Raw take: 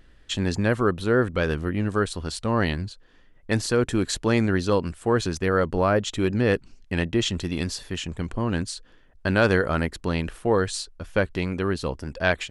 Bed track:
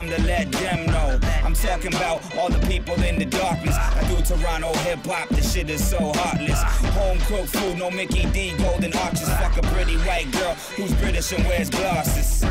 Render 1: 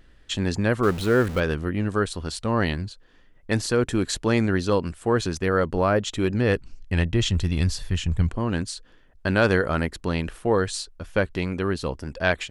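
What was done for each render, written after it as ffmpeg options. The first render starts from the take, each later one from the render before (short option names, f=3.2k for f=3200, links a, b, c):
-filter_complex "[0:a]asettb=1/sr,asplit=3[a][b][c];[a]atrim=end=0.834[d];[b]atrim=start=0.83:end=1.4,asetpts=PTS-STARTPTS,afade=t=in:d=0.004:c=qsin,afade=t=out:st=0.566:d=0.004:c=qsin,aeval=exprs='val(0)+0.5*0.0316*sgn(val(0))':c=same[e];[c]atrim=start=1.396[f];[d][e]acrossfade=d=0.004:c1=hsin:c2=qsin[g];[g][f]acrossfade=d=0.004:c1=qsin:c2=hsin,asettb=1/sr,asplit=3[h][i][j];[h]atrim=end=6.224[k];[i]atrim=start=6.22:end=8.29,asetpts=PTS-STARTPTS,afade=t=in:d=0.004:c=qsin,afade=t=out:st=2.066:d=0.004:c=qsin,asubboost=boost=10:cutoff=130[l];[j]atrim=start=8.286[m];[k][l]acrossfade=d=0.004:c1=hsin:c2=qsin[n];[n][m]acrossfade=d=0.004:c1=qsin:c2=hsin"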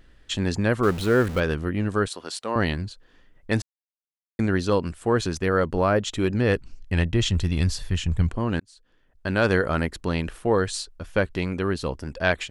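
-filter_complex "[0:a]asettb=1/sr,asplit=3[a][b][c];[a]atrim=end=2.074[d];[b]atrim=start=2.07:end=2.56,asetpts=PTS-STARTPTS,afade=t=in:d=0.004:c=qsin,afade=t=out:st=0.486:d=0.004:c=qsin,highpass=380[e];[c]atrim=start=2.556[f];[d][e]acrossfade=d=0.004:c1=hsin:c2=qsin[g];[g][f]acrossfade=d=0.004:c1=qsin:c2=hsin,asplit=4[h][i][j][k];[h]atrim=end=3.62,asetpts=PTS-STARTPTS,afade=t=out:st=3.616:d=0.004:c=hsin[l];[i]atrim=start=3.62:end=4.39,asetpts=PTS-STARTPTS,volume=0[m];[j]atrim=start=4.39:end=8.6,asetpts=PTS-STARTPTS,afade=t=in:d=0.004:c=hsin,afade=t=out:st=4.206:d=0.004:c=hsin[n];[k]atrim=start=8.6,asetpts=PTS-STARTPTS,afade=t=in:d=0.99[o];[l][m][n][o]concat=n=4:v=0:a=1"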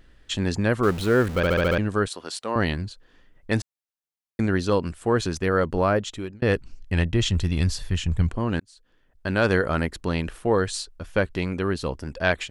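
-filter_complex "[0:a]asplit=8[a][b][c][d][e][f][g][h];[a]atrim=end=1.432[i];[b]atrim=start=1.358:end=1.432[j];[c]atrim=start=1.358:end=1.432[k];[d]atrim=start=1.358:end=1.432[l];[e]atrim=start=1.358:end=1.432[m];[f]atrim=start=1.358:end=1.432[n];[g]atrim=start=1.778:end=6.42,asetpts=PTS-STARTPTS,afade=t=out:st=4.122:d=0.52[o];[h]atrim=start=6.42,asetpts=PTS-STARTPTS,afade=t=in:d=0.004:c=hsin[p];[i][j]acrossfade=d=0.004:c1=hsin:c2=hsin[q];[q][k]acrossfade=d=0.004:c1=hsin:c2=hsin[r];[r][l]acrossfade=d=0.004:c1=hsin:c2=hsin[s];[s][m]acrossfade=d=0.004:c1=hsin:c2=hsin[t];[t][n]acrossfade=d=0.004:c1=hsin:c2=hsin[u];[o][p]concat=n=2:v=0:a=1[v];[u][v]acrossfade=d=0.004:c1=hsin:c2=hsin"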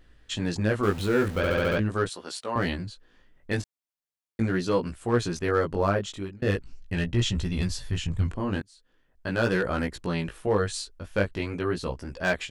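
-af "volume=12.5dB,asoftclip=hard,volume=-12.5dB,flanger=delay=16:depth=4.6:speed=0.41"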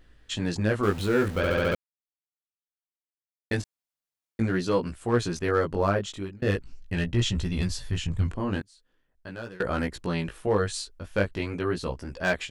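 -filter_complex "[0:a]asplit=4[a][b][c][d];[a]atrim=end=1.75,asetpts=PTS-STARTPTS,afade=t=out:st=1.746:d=0.004:c=hsin[e];[b]atrim=start=1.75:end=3.51,asetpts=PTS-STARTPTS,volume=0[f];[c]atrim=start=3.51:end=9.6,asetpts=PTS-STARTPTS,afade=t=in:d=0.004:c=hsin,afade=t=out:st=5.02:d=1.07:silence=0.0630957[g];[d]atrim=start=9.6,asetpts=PTS-STARTPTS,afade=t=in:d=0.004:c=hsin:silence=0.0630957[h];[e][f][g][h]concat=n=4:v=0:a=1"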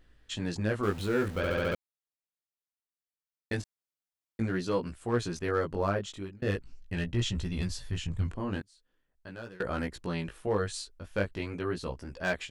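-af "volume=-5dB"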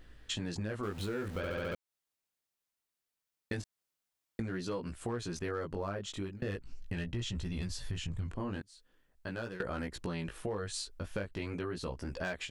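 -filter_complex "[0:a]asplit=2[a][b];[b]alimiter=level_in=4dB:limit=-24dB:level=0:latency=1,volume=-4dB,volume=0dB[c];[a][c]amix=inputs=2:normalize=0,acompressor=threshold=-35dB:ratio=5"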